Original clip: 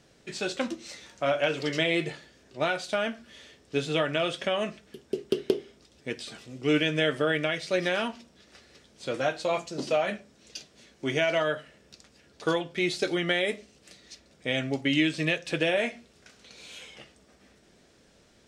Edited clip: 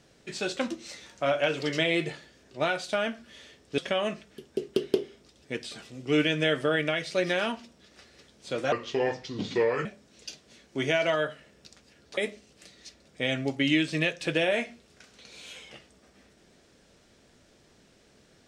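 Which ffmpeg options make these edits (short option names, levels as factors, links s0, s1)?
-filter_complex "[0:a]asplit=5[s0][s1][s2][s3][s4];[s0]atrim=end=3.782[s5];[s1]atrim=start=4.338:end=9.284[s6];[s2]atrim=start=9.28:end=10.13,asetpts=PTS-STARTPTS,asetrate=33075,aresample=44100[s7];[s3]atrim=start=10.126:end=12.452[s8];[s4]atrim=start=13.428[s9];[s5][s6]acrossfade=d=0.004:c1=hsin:c2=hsin[s10];[s10][s7]acrossfade=d=0.004:c1=hsin:c2=hsin[s11];[s11][s8]acrossfade=d=0.004:c1=hsin:c2=hsin[s12];[s12][s9]acrossfade=d=0.004:c1=hsin:c2=hsin"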